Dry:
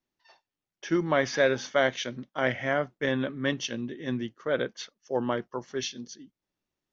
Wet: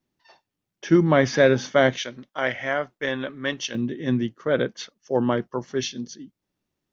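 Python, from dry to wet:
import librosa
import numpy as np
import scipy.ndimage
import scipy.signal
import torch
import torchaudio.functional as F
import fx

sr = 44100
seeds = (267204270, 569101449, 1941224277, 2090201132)

y = fx.peak_eq(x, sr, hz=140.0, db=fx.steps((0.0, 9.0), (1.98, -7.5), (3.75, 6.0)), octaves=2.9)
y = y * librosa.db_to_amplitude(3.5)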